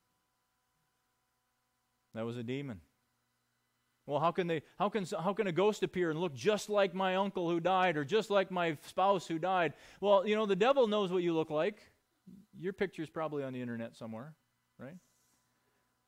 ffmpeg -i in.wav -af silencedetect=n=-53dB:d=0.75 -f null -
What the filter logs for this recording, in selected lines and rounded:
silence_start: 0.00
silence_end: 2.14 | silence_duration: 2.14
silence_start: 2.80
silence_end: 4.07 | silence_duration: 1.27
silence_start: 14.98
silence_end: 16.07 | silence_duration: 1.09